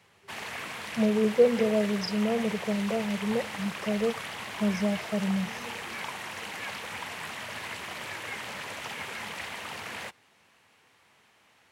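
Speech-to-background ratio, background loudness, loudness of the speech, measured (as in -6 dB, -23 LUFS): 8.5 dB, -36.5 LUFS, -28.0 LUFS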